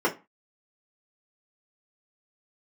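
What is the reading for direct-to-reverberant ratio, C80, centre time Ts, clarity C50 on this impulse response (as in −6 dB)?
−4.5 dB, 23.0 dB, 13 ms, 15.5 dB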